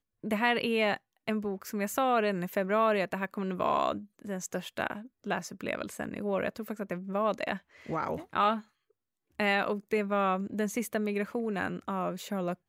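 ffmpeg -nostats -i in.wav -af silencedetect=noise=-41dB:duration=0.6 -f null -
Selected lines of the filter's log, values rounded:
silence_start: 8.60
silence_end: 9.39 | silence_duration: 0.79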